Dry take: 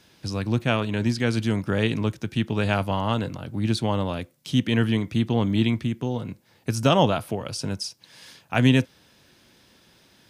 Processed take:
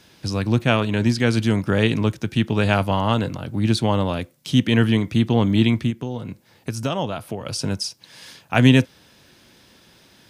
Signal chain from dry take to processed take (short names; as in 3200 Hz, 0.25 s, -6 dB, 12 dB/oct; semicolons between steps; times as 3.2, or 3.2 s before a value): 5.9–7.47 compressor 2:1, threshold -33 dBFS, peak gain reduction 11 dB; gain +4.5 dB